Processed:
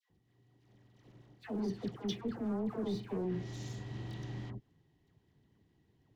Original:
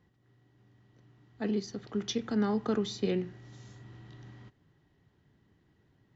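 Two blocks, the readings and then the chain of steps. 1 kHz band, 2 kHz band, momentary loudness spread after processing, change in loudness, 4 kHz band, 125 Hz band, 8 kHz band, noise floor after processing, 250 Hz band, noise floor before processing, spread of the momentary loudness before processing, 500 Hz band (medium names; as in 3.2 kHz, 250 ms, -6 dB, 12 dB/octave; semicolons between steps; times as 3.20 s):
-6.5 dB, -6.5 dB, 8 LU, -6.5 dB, -7.5 dB, 0.0 dB, no reading, -74 dBFS, -5.0 dB, -70 dBFS, 21 LU, -6.0 dB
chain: band-stop 580 Hz, Q 12; low-pass that closes with the level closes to 1.2 kHz, closed at -27 dBFS; peaking EQ 1.4 kHz -9 dB 0.69 oct; waveshaping leveller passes 2; reverse; compression 8:1, threshold -35 dBFS, peak gain reduction 12.5 dB; reverse; phase dispersion lows, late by 102 ms, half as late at 1.1 kHz; trim +1 dB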